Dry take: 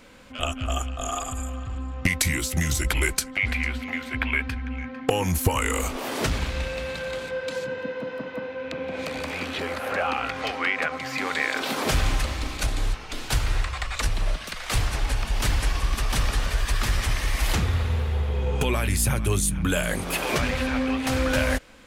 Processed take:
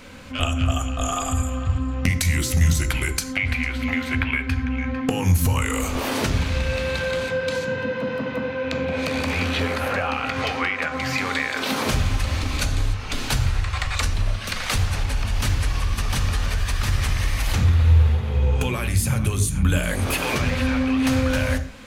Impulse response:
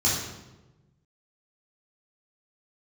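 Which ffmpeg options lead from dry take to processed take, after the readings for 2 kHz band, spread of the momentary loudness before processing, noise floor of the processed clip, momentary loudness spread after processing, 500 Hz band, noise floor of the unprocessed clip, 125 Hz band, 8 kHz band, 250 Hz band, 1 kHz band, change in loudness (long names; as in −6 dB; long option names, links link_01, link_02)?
+1.5 dB, 8 LU, −30 dBFS, 6 LU, +2.0 dB, −38 dBFS, +6.5 dB, +0.5 dB, +5.0 dB, +1.5 dB, +3.5 dB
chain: -filter_complex "[0:a]acompressor=threshold=-28dB:ratio=6,asplit=2[link_01][link_02];[1:a]atrim=start_sample=2205,atrim=end_sample=6174,lowshelf=frequency=450:gain=6.5[link_03];[link_02][link_03]afir=irnorm=-1:irlink=0,volume=-22dB[link_04];[link_01][link_04]amix=inputs=2:normalize=0,volume=7dB"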